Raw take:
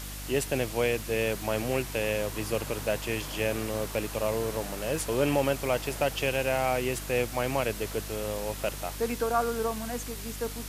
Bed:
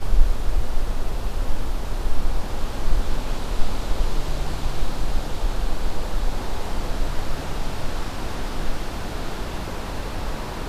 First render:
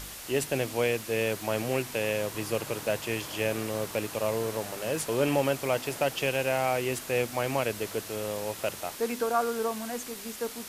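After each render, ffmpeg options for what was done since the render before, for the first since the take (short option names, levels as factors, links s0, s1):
-af "bandreject=f=50:t=h:w=4,bandreject=f=100:t=h:w=4,bandreject=f=150:t=h:w=4,bandreject=f=200:t=h:w=4,bandreject=f=250:t=h:w=4,bandreject=f=300:t=h:w=4"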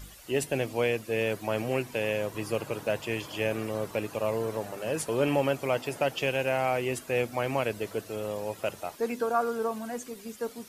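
-af "afftdn=nr=12:nf=-42"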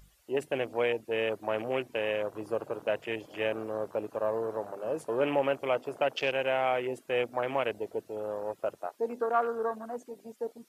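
-af "afwtdn=0.0158,bass=f=250:g=-12,treble=f=4000:g=0"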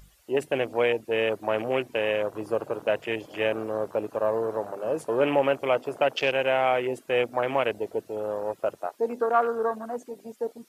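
-af "volume=1.78"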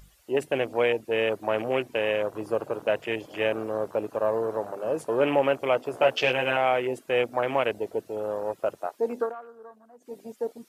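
-filter_complex "[0:a]asettb=1/sr,asplit=3[s0][s1][s2];[s0]atrim=end=5.924[s3];[s1]atrim=start=5.92:end=6.57,asetpts=PTS-STARTPTS,afade=t=in:d=0.004:c=qsin,afade=t=out:st=0.646:d=0.004:c=qsin,asplit=2[s4][s5];[s5]adelay=16,volume=0.75[s6];[s4][s6]amix=inputs=2:normalize=0,atrim=end_sample=28665[s7];[s2]atrim=start=6.566[s8];[s3][s7]acrossfade=d=0.004:c1=hsin:c2=qsin[s9];[s9][s8]acrossfade=d=0.004:c1=qsin:c2=hsin,asplit=3[s10][s11][s12];[s10]atrim=end=9.35,asetpts=PTS-STARTPTS,afade=t=out:st=9.21:d=0.14:silence=0.1[s13];[s11]atrim=start=9.35:end=10,asetpts=PTS-STARTPTS,volume=0.1[s14];[s12]atrim=start=10,asetpts=PTS-STARTPTS,afade=t=in:d=0.14:silence=0.1[s15];[s13][s14][s15]concat=n=3:v=0:a=1"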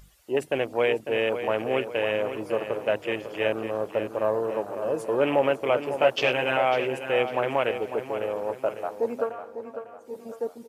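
-filter_complex "[0:a]asplit=2[s0][s1];[s1]adelay=550,lowpass=f=4700:p=1,volume=0.335,asplit=2[s2][s3];[s3]adelay=550,lowpass=f=4700:p=1,volume=0.45,asplit=2[s4][s5];[s5]adelay=550,lowpass=f=4700:p=1,volume=0.45,asplit=2[s6][s7];[s7]adelay=550,lowpass=f=4700:p=1,volume=0.45,asplit=2[s8][s9];[s9]adelay=550,lowpass=f=4700:p=1,volume=0.45[s10];[s0][s2][s4][s6][s8][s10]amix=inputs=6:normalize=0"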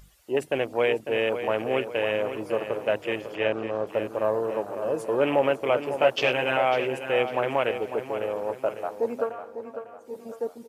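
-filter_complex "[0:a]asettb=1/sr,asplit=3[s0][s1][s2];[s0]atrim=end=3.354[s3];[s1]atrim=start=3.35:end=3.87,asetpts=PTS-STARTPTS,afade=t=in:d=0.004:c=qsin,afade=t=out:st=0.516:d=0.004:c=qsin,lowpass=5800[s4];[s2]atrim=start=3.866[s5];[s3][s4]acrossfade=d=0.004:c1=hsin:c2=qsin[s6];[s6][s5]acrossfade=d=0.004:c1=qsin:c2=hsin"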